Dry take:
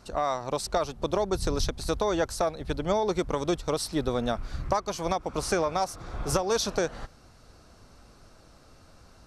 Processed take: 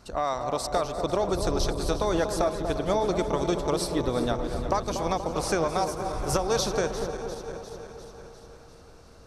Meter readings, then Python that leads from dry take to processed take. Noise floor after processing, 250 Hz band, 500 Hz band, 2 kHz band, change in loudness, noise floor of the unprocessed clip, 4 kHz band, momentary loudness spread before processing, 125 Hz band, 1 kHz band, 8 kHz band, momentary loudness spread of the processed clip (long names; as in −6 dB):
−50 dBFS, +2.0 dB, +2.0 dB, +0.5 dB, +1.5 dB, −55 dBFS, +0.5 dB, 5 LU, +2.0 dB, +1.5 dB, +0.5 dB, 13 LU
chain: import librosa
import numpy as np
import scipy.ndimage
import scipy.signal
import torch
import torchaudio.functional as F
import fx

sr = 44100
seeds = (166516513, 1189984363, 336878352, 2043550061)

y = fx.reverse_delay_fb(x, sr, ms=175, feedback_pct=79, wet_db=-13)
y = fx.echo_wet_lowpass(y, sr, ms=239, feedback_pct=66, hz=970.0, wet_db=-6.5)